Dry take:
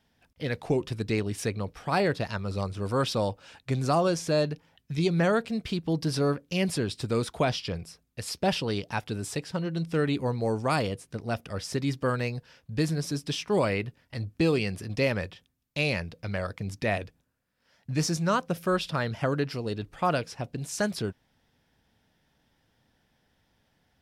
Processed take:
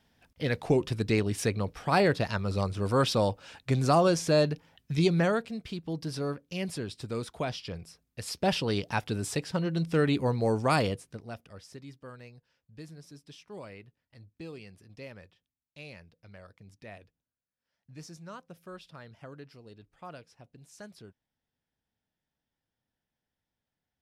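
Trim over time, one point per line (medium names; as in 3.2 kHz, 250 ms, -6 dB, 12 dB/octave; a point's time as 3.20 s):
5.05 s +1.5 dB
5.57 s -7 dB
7.52 s -7 dB
8.80 s +1 dB
10.90 s +1 dB
11.29 s -10.5 dB
11.95 s -19 dB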